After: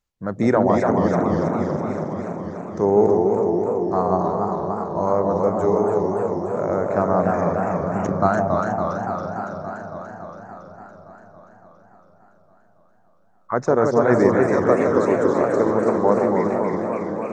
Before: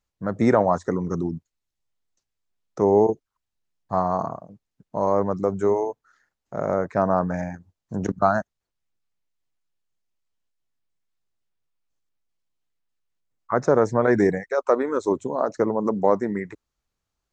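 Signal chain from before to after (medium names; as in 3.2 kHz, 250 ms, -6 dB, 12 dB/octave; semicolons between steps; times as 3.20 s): echo whose repeats swap between lows and highs 164 ms, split 850 Hz, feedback 74%, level -3.5 dB; modulated delay 284 ms, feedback 74%, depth 193 cents, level -5 dB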